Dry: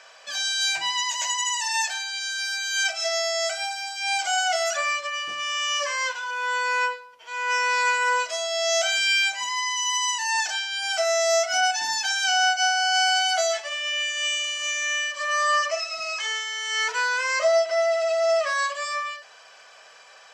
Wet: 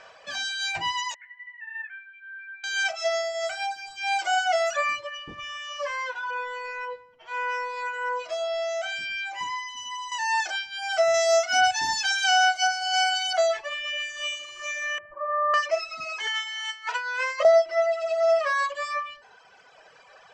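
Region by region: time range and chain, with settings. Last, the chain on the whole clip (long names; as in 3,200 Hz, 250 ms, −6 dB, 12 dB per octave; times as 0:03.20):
0:01.14–0:02.64: flat-topped band-pass 1,900 Hz, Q 2.7 + high-frequency loss of the air 450 metres
0:05.17–0:10.12: high-shelf EQ 4,800 Hz −6.5 dB + downward compressor 4 to 1, threshold −26 dBFS + repeating echo 89 ms, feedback 58%, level −17.5 dB
0:11.14–0:13.33: high-shelf EQ 3,000 Hz +7 dB + delay with a high-pass on its return 330 ms, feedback 49%, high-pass 4,600 Hz, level −10.5 dB
0:14.98–0:15.54: low-pass filter 1,400 Hz 24 dB per octave + low-shelf EQ 140 Hz +6 dB
0:16.27–0:17.45: parametric band 3,000 Hz +4.5 dB 0.6 octaves + compressor whose output falls as the input rises −26 dBFS, ratio −0.5 + Butterworth high-pass 510 Hz 96 dB per octave
whole clip: RIAA equalisation playback; reverb reduction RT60 1.7 s; level +2.5 dB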